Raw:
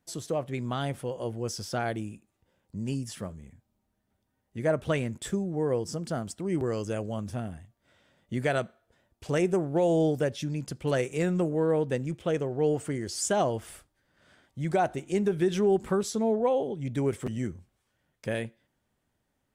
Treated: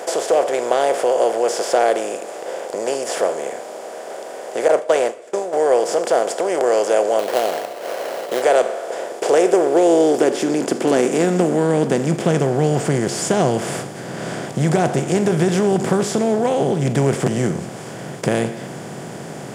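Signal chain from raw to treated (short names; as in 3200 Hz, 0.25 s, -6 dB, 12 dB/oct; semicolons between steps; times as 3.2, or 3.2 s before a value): per-bin compression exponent 0.4; 4.68–5.53 gate -22 dBFS, range -31 dB; in parallel at 0 dB: compressor, threshold -30 dBFS, peak gain reduction 13 dB; 7.19–8.42 on the sum: sample-rate reducer 3600 Hz, jitter 20%; high-pass sweep 530 Hz -> 140 Hz, 8.9–12.67; two-slope reverb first 0.68 s, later 2.7 s, DRR 13.5 dB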